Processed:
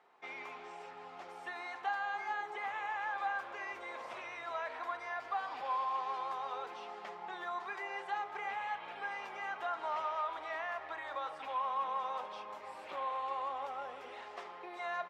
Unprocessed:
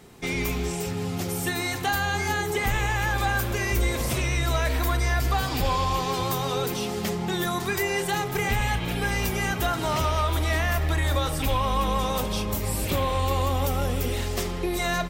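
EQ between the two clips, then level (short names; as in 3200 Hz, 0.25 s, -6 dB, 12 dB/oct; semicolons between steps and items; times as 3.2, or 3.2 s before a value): ladder band-pass 1100 Hz, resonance 30%; +1.0 dB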